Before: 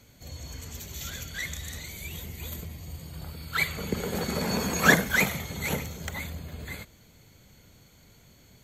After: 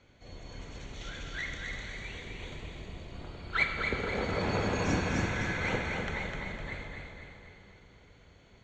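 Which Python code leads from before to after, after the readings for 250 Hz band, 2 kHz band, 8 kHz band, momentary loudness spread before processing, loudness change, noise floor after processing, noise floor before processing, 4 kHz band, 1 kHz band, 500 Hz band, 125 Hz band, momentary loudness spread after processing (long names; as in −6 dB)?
−4.0 dB, −5.5 dB, −13.5 dB, 19 LU, −4.5 dB, −59 dBFS, −57 dBFS, −6.0 dB, −3.0 dB, −2.0 dB, −2.5 dB, 17 LU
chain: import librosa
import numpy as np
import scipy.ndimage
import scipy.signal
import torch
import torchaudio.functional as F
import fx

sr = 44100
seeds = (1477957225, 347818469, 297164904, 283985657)

y = fx.octave_divider(x, sr, octaves=1, level_db=3.0)
y = fx.peak_eq(y, sr, hz=270.0, db=-2.0, octaves=0.77)
y = fx.notch(y, sr, hz=4700.0, q=13.0)
y = fx.rev_plate(y, sr, seeds[0], rt60_s=2.8, hf_ratio=0.85, predelay_ms=0, drr_db=3.5)
y = fx.spec_repair(y, sr, seeds[1], start_s=4.83, length_s=0.68, low_hz=360.0, high_hz=4600.0, source='both')
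y = scipy.signal.sosfilt(scipy.signal.butter(4, 6100.0, 'lowpass', fs=sr, output='sos'), y)
y = fx.bass_treble(y, sr, bass_db=-9, treble_db=-11)
y = fx.echo_feedback(y, sr, ms=254, feedback_pct=47, wet_db=-4.5)
y = fx.upward_expand(y, sr, threshold_db=-28.0, expansion=1.5)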